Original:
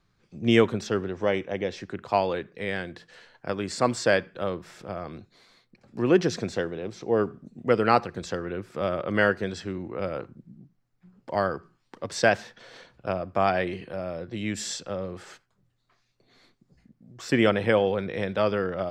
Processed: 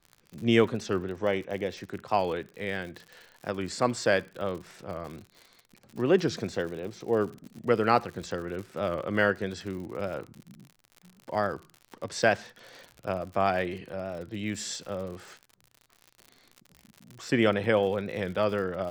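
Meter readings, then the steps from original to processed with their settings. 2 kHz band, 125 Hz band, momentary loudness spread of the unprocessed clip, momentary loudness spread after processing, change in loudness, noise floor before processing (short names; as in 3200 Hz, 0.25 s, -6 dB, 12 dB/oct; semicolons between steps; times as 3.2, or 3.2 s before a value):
-2.5 dB, -2.5 dB, 15 LU, 15 LU, -2.5 dB, -71 dBFS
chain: crackle 78/s -35 dBFS; record warp 45 rpm, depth 100 cents; gain -2.5 dB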